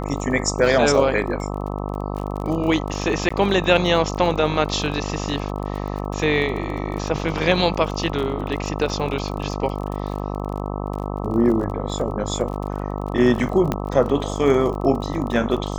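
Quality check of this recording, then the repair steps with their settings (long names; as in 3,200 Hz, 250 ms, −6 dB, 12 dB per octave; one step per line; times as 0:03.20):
mains buzz 50 Hz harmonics 26 −27 dBFS
surface crackle 31 per second −29 dBFS
0:03.29–0:03.31: drop-out 15 ms
0:13.72: click −8 dBFS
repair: click removal
hum removal 50 Hz, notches 26
repair the gap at 0:03.29, 15 ms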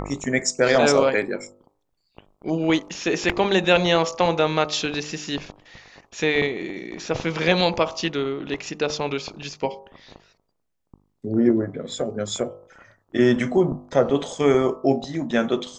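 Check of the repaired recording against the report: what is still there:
none of them is left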